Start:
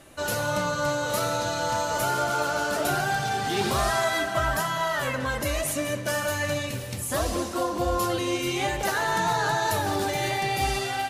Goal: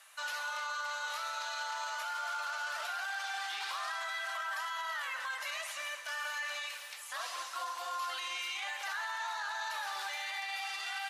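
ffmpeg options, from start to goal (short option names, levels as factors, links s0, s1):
-filter_complex "[0:a]acrossover=split=5200[s0][s1];[s1]acompressor=threshold=0.00398:ratio=4:attack=1:release=60[s2];[s0][s2]amix=inputs=2:normalize=0,highpass=f=1000:w=0.5412,highpass=f=1000:w=1.3066,alimiter=level_in=1.41:limit=0.0631:level=0:latency=1:release=15,volume=0.708,flanger=delay=1.1:depth=8.6:regen=-88:speed=0.36:shape=triangular,volume=1.19" -ar 32000 -c:a ac3 -b:a 128k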